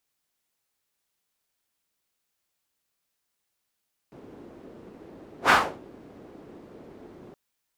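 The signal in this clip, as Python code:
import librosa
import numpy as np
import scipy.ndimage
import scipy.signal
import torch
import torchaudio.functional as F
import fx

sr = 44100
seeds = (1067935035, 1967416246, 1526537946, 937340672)

y = fx.whoosh(sr, seeds[0], length_s=3.22, peak_s=1.38, rise_s=0.1, fall_s=0.33, ends_hz=340.0, peak_hz=1300.0, q=1.8, swell_db=30.5)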